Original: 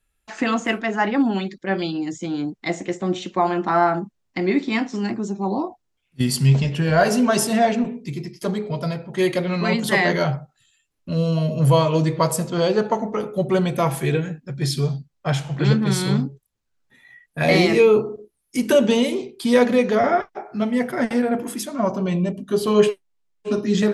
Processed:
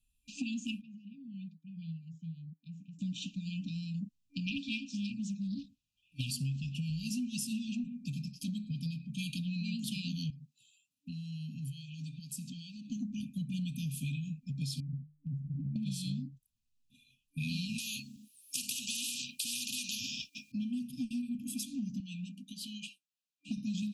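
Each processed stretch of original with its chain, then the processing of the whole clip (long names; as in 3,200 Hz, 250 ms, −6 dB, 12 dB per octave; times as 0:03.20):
0:00.81–0:02.99: downward compressor 3 to 1, threshold −22 dBFS + pair of resonant band-passes 450 Hz, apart 3 octaves
0:04.46–0:06.31: parametric band 1,600 Hz +11.5 dB 2.6 octaves + notch comb filter 250 Hz + highs frequency-modulated by the lows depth 0.31 ms
0:10.30–0:12.90: high-pass filter 170 Hz + downward compressor 4 to 1, threshold −33 dBFS
0:14.80–0:15.76: inverse Chebyshev low-pass filter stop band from 1,400 Hz + mains-hum notches 50/100/150/200 Hz + downward compressor, threshold −25 dBFS
0:17.78–0:20.52: high-pass filter 1,500 Hz 6 dB per octave + every bin compressed towards the loudest bin 4 to 1
0:22.00–0:23.49: meter weighting curve A + downward compressor 3 to 1, threshold −30 dBFS
whole clip: brick-wall band-stop 290–2,400 Hz; downward compressor, threshold −29 dBFS; level −5 dB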